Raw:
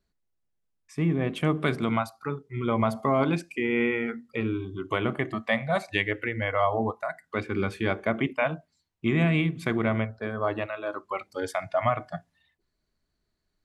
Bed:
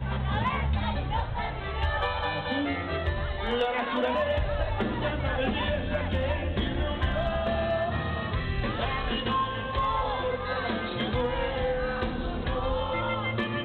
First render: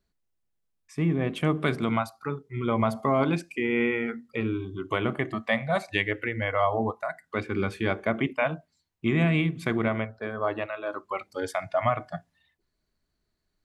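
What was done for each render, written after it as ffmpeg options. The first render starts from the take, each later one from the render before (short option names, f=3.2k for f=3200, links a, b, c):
-filter_complex "[0:a]asettb=1/sr,asplit=3[a][b][c];[a]atrim=end=9.884[d];[b]atrim=start=9.88:end=10.91,asetpts=PTS-STARTPTS,afade=t=in:d=0.004:c=qsin,afade=t=out:st=1.026:d=0.004:c=qsin,bass=f=250:g=-5,treble=f=4k:g=-3[e];[c]atrim=start=10.906[f];[d][e]acrossfade=d=0.004:c1=hsin:c2=qsin[g];[g][f]acrossfade=d=0.004:c1=qsin:c2=hsin"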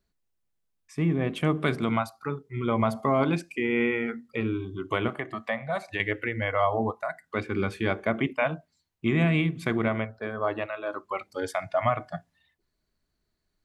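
-filter_complex "[0:a]asettb=1/sr,asplit=3[a][b][c];[a]atrim=end=5.084[d];[b]atrim=start=5.08:end=6,asetpts=PTS-STARTPTS,afade=t=in:d=0.004:c=qsin,afade=t=out:st=0.916:d=0.004:c=qsin,acrossover=split=510|2000[e][f][g];[e]acompressor=threshold=-37dB:ratio=4[h];[f]acompressor=threshold=-27dB:ratio=4[i];[g]acompressor=threshold=-44dB:ratio=4[j];[h][i][j]amix=inputs=3:normalize=0[k];[c]atrim=start=5.996[l];[d][k]acrossfade=d=0.004:c1=hsin:c2=qsin[m];[m][l]acrossfade=d=0.004:c1=qsin:c2=hsin"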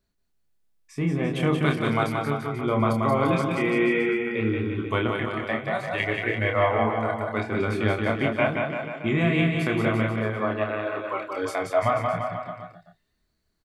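-filter_complex "[0:a]asplit=2[a][b];[b]adelay=28,volume=-4dB[c];[a][c]amix=inputs=2:normalize=0,aecho=1:1:180|342|487.8|619|737.1:0.631|0.398|0.251|0.158|0.1"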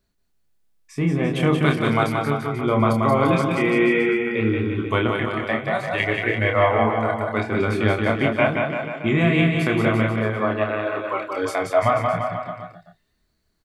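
-af "volume=4dB"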